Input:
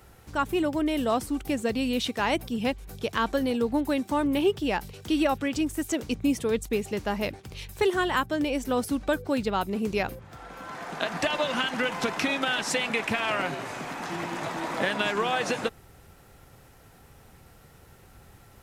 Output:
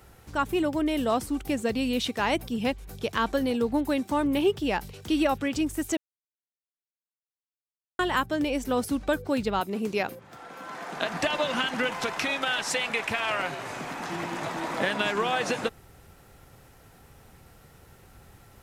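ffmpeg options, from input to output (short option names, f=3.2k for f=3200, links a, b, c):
-filter_complex "[0:a]asettb=1/sr,asplit=3[a][b][c];[a]atrim=end=9.604[d];[b]atrim=start=9.6:end=10.96,asetpts=PTS-STARTPTS,afade=t=in:d=0.004:c=qsin,afade=t=out:st=1.356:d=0.004:c=qsin,highpass=180[e];[c]atrim=start=10.956[f];[d][e]acrossfade=d=0.004:c1=hsin:c2=qsin[g];[g][f]acrossfade=d=0.004:c1=qsin:c2=hsin,asettb=1/sr,asplit=3[h][i][j];[h]atrim=end=11.934[k];[i]atrim=start=11.93:end=13.65,asetpts=PTS-STARTPTS,afade=t=in:d=0.004:c=qsin,afade=t=out:st=1.716:d=0.004:c=qsin,equalizer=f=230:t=o:w=1.5:g=-7[l];[j]atrim=start=13.646[m];[k][l]acrossfade=d=0.004:c1=hsin:c2=qsin[n];[n][m]acrossfade=d=0.004:c1=qsin:c2=hsin,asplit=3[o][p][q];[o]atrim=end=5.97,asetpts=PTS-STARTPTS,afade=t=out:st=5.966:d=0.004:c=hsin[r];[p]atrim=start=5.97:end=7.99,asetpts=PTS-STARTPTS,volume=0[s];[q]atrim=start=7.99,asetpts=PTS-STARTPTS,afade=t=in:d=0.004:c=hsin[t];[r][s][t]concat=n=3:v=0:a=1"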